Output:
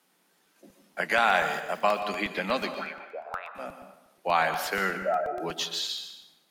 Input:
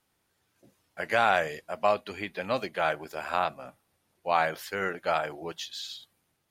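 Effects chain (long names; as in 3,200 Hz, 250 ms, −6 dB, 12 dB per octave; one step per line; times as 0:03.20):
0:04.97–0:05.40: expanding power law on the bin magnitudes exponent 3.1
dynamic equaliser 450 Hz, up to −6 dB, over −39 dBFS, Q 0.89
in parallel at +1.5 dB: downward compressor, threshold −32 dBFS, peak gain reduction 11.5 dB
0:01.26–0:02.01: on the sum: centre clipping without the shift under −46.5 dBFS
0:02.72–0:03.55: envelope filter 230–2,400 Hz, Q 8.1, up, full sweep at −20.5 dBFS
Butterworth high-pass 160 Hz 72 dB per octave
dense smooth reverb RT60 0.91 s, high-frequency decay 0.8×, pre-delay 110 ms, DRR 8.5 dB
regular buffer underruns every 0.12 s, samples 64, repeat, from 0:00.46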